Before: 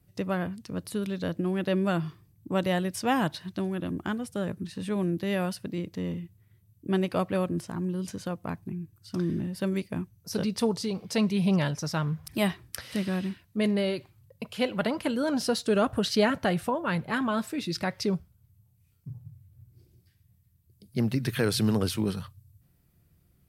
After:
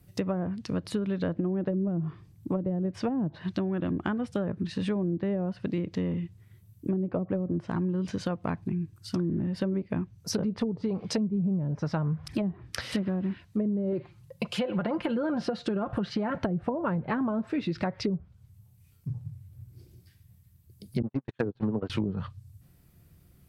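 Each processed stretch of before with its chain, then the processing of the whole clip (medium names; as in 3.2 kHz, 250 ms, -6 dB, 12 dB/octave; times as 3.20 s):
13.92–16.37 s: comb 5.7 ms, depth 53% + compression, threshold -25 dBFS
21.02–21.90 s: jump at every zero crossing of -35.5 dBFS + cabinet simulation 140–7800 Hz, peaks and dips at 180 Hz -7 dB, 990 Hz +4 dB, 2.2 kHz -3 dB, 5.2 kHz -6 dB + gate -27 dBFS, range -50 dB
whole clip: low-pass that closes with the level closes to 330 Hz, closed at -22 dBFS; compression, threshold -32 dBFS; trim +6.5 dB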